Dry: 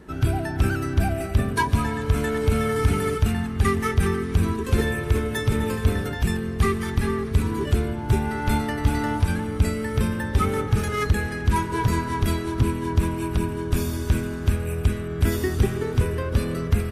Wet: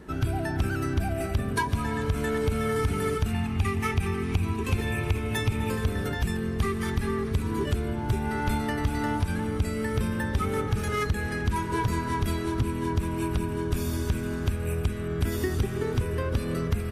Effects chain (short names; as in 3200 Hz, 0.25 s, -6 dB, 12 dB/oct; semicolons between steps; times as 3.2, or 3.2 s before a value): 3.33–5.7 thirty-one-band EQ 100 Hz +7 dB, 500 Hz -7 dB, 800 Hz +6 dB, 1600 Hz -4 dB, 2500 Hz +10 dB; compressor 4:1, threshold -23 dBFS, peak gain reduction 10.5 dB